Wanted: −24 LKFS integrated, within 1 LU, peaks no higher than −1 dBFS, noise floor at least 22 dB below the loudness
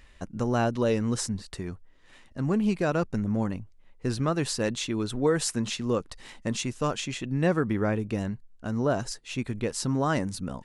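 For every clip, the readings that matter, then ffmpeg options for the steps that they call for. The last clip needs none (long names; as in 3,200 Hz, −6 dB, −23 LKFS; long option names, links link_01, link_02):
integrated loudness −28.5 LKFS; sample peak −12.0 dBFS; target loudness −24.0 LKFS
→ -af "volume=4.5dB"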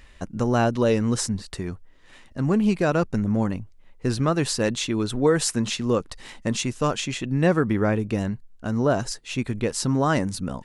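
integrated loudness −24.0 LKFS; sample peak −7.5 dBFS; background noise floor −51 dBFS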